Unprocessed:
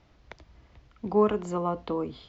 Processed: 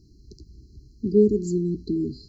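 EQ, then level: brick-wall FIR band-stop 430–4000 Hz; +8.0 dB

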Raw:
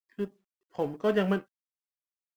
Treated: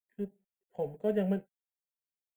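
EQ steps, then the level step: Butterworth band-stop 5.4 kHz, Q 2.2; peaking EQ 4.2 kHz -14 dB 1.6 oct; static phaser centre 310 Hz, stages 6; -2.0 dB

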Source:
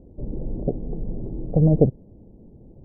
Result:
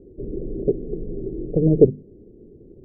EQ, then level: resonant low-pass 400 Hz, resonance Q 4.9; hum notches 50/100/150/200/250 Hz; -3.0 dB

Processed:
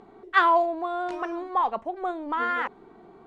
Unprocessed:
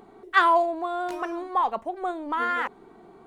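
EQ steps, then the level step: distance through air 85 m; 0.0 dB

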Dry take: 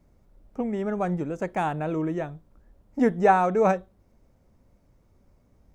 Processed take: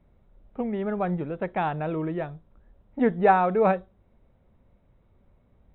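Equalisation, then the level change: brick-wall FIR low-pass 4 kHz; peaking EQ 290 Hz -5 dB 0.28 oct; 0.0 dB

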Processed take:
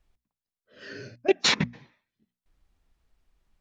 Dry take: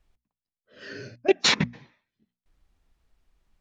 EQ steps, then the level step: flat; -1.5 dB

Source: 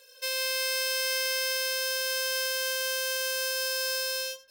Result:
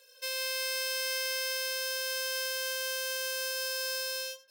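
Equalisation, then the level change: high-pass 260 Hz 12 dB/octave; -4.0 dB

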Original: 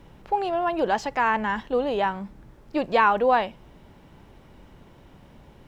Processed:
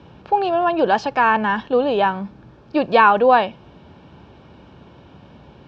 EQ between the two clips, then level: high-pass 66 Hz 24 dB/octave; Butterworth band-stop 2 kHz, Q 6.8; low-pass 5.2 kHz 24 dB/octave; +6.5 dB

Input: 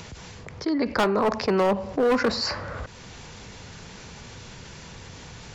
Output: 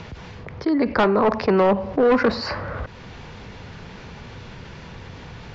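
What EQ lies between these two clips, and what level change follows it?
distance through air 220 m; +5.0 dB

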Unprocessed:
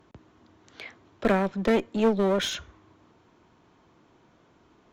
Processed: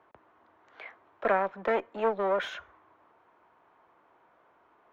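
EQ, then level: three-band isolator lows -22 dB, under 540 Hz, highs -17 dB, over 2.5 kHz; treble shelf 2.4 kHz -9 dB; +4.0 dB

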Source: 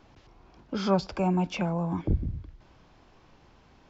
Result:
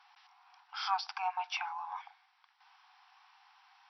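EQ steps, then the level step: brick-wall FIR band-pass 720–5900 Hz; 0.0 dB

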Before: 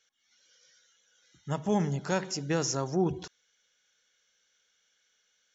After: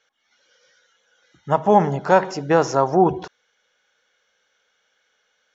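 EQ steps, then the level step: peaking EQ 750 Hz +11 dB 2.3 oct; dynamic bell 960 Hz, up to +5 dB, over -33 dBFS, Q 0.8; distance through air 100 m; +4.0 dB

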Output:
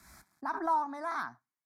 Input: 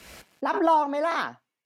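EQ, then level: static phaser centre 1.2 kHz, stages 4; -6.5 dB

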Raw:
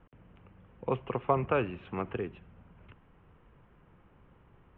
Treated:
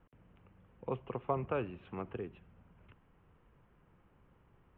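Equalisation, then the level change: dynamic bell 2.1 kHz, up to -4 dB, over -48 dBFS, Q 0.72; -6.0 dB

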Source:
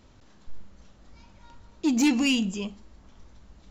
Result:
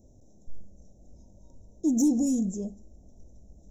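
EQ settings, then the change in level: elliptic band-stop 660–5200 Hz, stop band 40 dB; Butterworth band-stop 4.6 kHz, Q 2.4; 0.0 dB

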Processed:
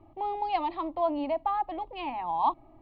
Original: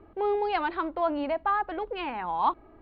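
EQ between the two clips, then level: peaking EQ 410 Hz -7 dB 1.3 oct; treble shelf 3.1 kHz -8 dB; static phaser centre 300 Hz, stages 8; +4.0 dB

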